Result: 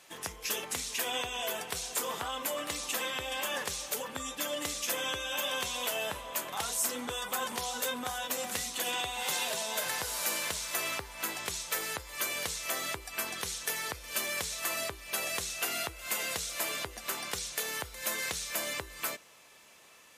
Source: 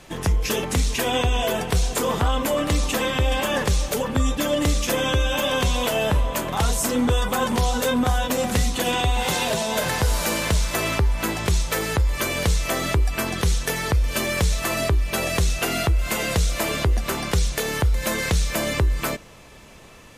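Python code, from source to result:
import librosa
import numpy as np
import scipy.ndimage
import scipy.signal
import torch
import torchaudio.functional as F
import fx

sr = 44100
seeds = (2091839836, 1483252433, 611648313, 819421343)

y = fx.highpass(x, sr, hz=1000.0, slope=6)
y = fx.high_shelf(y, sr, hz=8500.0, db=6.5)
y = y * 10.0 ** (-8.0 / 20.0)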